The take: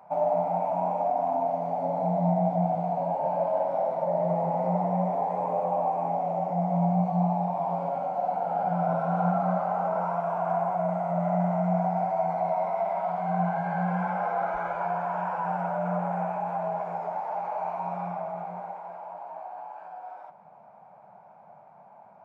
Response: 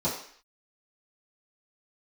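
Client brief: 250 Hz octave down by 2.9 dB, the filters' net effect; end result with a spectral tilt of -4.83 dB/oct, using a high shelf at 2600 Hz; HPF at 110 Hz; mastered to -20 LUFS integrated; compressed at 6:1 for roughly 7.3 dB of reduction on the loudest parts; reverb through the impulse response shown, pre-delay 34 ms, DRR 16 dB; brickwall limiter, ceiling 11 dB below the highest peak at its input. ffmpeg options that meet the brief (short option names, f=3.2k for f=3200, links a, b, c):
-filter_complex "[0:a]highpass=110,equalizer=f=250:t=o:g=-4.5,highshelf=f=2.6k:g=-8.5,acompressor=threshold=-31dB:ratio=6,alimiter=level_in=9dB:limit=-24dB:level=0:latency=1,volume=-9dB,asplit=2[a][b];[1:a]atrim=start_sample=2205,adelay=34[c];[b][c]afir=irnorm=-1:irlink=0,volume=-25.5dB[d];[a][d]amix=inputs=2:normalize=0,volume=20dB"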